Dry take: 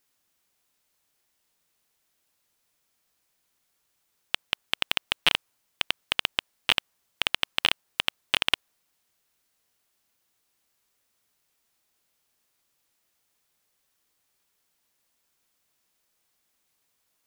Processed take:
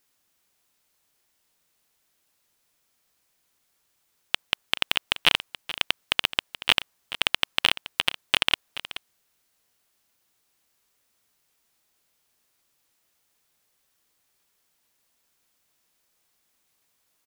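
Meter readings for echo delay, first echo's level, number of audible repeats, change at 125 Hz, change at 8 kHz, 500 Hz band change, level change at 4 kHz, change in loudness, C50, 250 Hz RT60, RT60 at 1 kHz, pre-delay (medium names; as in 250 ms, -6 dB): 428 ms, -14.5 dB, 1, +2.5 dB, +2.5 dB, +2.5 dB, +2.5 dB, +2.0 dB, no reverb, no reverb, no reverb, no reverb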